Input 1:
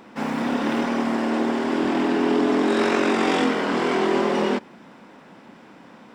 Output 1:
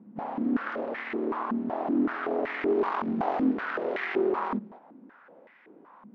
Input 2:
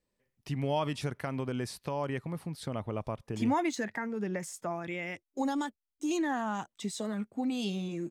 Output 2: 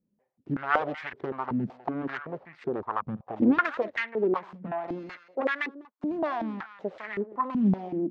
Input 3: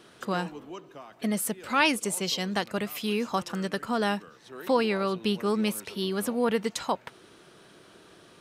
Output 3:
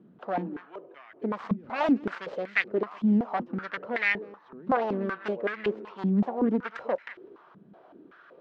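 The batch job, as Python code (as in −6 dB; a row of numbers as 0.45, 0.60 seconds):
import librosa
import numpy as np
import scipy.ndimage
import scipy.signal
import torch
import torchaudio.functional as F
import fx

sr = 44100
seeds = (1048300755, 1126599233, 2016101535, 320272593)

y = fx.self_delay(x, sr, depth_ms=0.86)
y = fx.air_absorb(y, sr, metres=180.0)
y = y + 10.0 ** (-17.5 / 20.0) * np.pad(y, (int(199 * sr / 1000.0), 0))[:len(y)]
y = fx.filter_held_bandpass(y, sr, hz=5.3, low_hz=200.0, high_hz=2000.0)
y = y * 10.0 ** (-30 / 20.0) / np.sqrt(np.mean(np.square(y)))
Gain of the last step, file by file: +3.0, +15.5, +11.0 decibels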